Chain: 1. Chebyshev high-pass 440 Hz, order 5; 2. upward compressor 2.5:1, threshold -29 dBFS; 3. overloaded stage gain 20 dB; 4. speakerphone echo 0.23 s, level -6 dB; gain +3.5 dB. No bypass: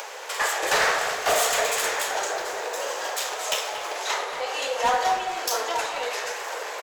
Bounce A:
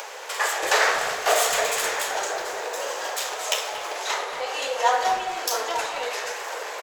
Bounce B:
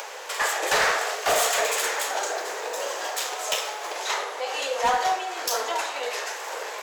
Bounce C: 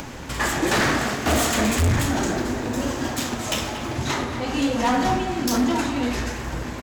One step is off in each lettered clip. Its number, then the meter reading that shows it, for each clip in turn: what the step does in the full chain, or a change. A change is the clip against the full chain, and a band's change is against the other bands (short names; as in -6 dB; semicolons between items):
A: 3, distortion -15 dB; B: 4, echo-to-direct -10.0 dB to none; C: 1, 250 Hz band +24.5 dB